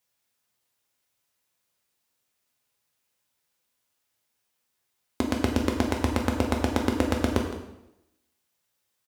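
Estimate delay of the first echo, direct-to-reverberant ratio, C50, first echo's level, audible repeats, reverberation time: 0.164 s, 0.0 dB, 5.0 dB, -13.5 dB, 1, 0.85 s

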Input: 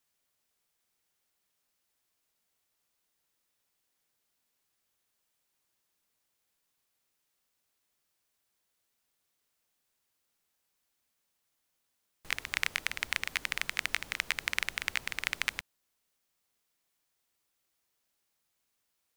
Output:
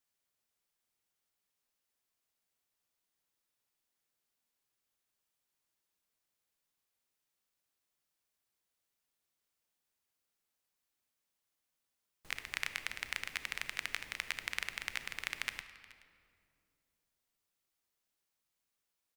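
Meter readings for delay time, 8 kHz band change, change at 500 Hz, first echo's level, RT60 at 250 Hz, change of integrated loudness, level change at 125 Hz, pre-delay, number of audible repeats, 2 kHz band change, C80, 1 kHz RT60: 0.426 s, -6.5 dB, -6.0 dB, -21.5 dB, 3.2 s, -6.5 dB, -6.0 dB, 30 ms, 1, -6.0 dB, 12.5 dB, 2.2 s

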